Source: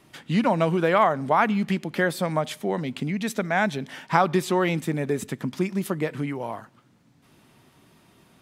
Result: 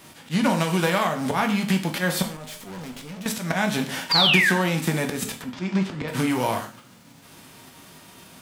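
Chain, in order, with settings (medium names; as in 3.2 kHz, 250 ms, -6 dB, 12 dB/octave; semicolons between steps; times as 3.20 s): formants flattened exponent 0.6; 0.49–1.08 s: peaking EQ 8.4 kHz +4 dB 2.6 oct; slow attack 174 ms; compression 8:1, threshold -28 dBFS, peak gain reduction 14.5 dB; 2.22–3.26 s: valve stage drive 45 dB, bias 0.75; 4.11–4.51 s: painted sound fall 1.5–4.9 kHz -28 dBFS; 5.42–6.08 s: distance through air 150 m; gated-style reverb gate 150 ms falling, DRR 3.5 dB; trim +8 dB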